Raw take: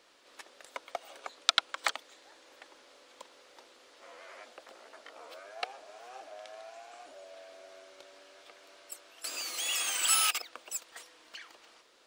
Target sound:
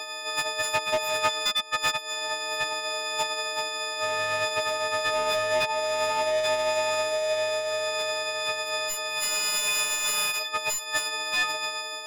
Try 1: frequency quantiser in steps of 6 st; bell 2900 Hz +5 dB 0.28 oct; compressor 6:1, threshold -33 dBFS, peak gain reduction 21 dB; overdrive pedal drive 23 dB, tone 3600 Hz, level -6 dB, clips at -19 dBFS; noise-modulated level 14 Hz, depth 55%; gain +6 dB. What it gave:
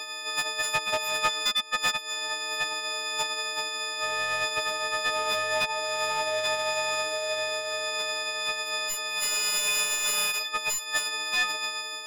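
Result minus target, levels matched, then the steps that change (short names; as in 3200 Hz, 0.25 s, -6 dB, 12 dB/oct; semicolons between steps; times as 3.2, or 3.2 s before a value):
500 Hz band -5.0 dB
add after compressor: bell 680 Hz +7.5 dB 0.91 oct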